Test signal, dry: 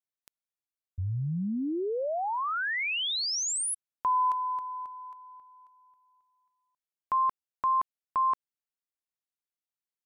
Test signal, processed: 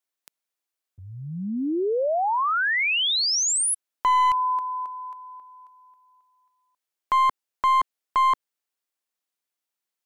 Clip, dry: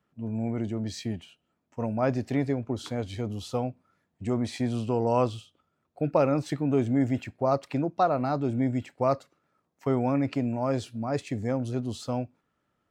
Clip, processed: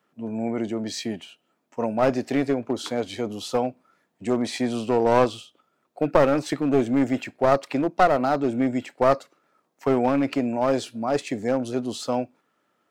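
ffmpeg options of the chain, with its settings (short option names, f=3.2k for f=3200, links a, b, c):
-af "highpass=270,aeval=exprs='clip(val(0),-1,0.0501)':c=same,volume=7.5dB"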